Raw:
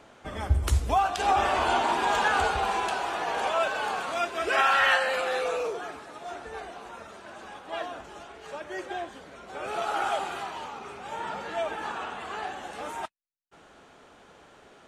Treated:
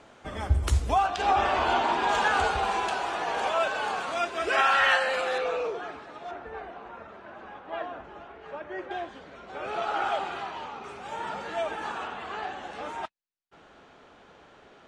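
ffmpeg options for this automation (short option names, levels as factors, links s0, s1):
-af "asetnsamples=n=441:p=0,asendcmd='1.06 lowpass f 5300;2.09 lowpass f 8700;5.38 lowpass f 4100;6.31 lowpass f 2200;8.91 lowpass f 4500;10.84 lowpass f 9100;12.07 lowpass f 5100',lowpass=10000"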